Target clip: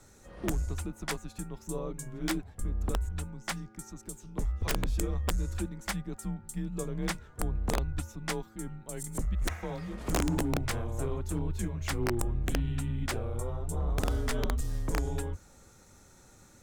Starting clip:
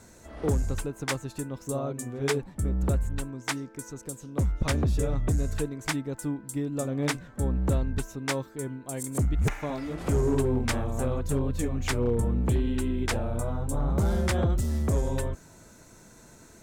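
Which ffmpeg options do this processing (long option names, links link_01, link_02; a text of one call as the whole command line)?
ffmpeg -i in.wav -af "afreqshift=-110,aeval=exprs='(mod(6.31*val(0)+1,2)-1)/6.31':channel_layout=same,volume=-4.5dB" out.wav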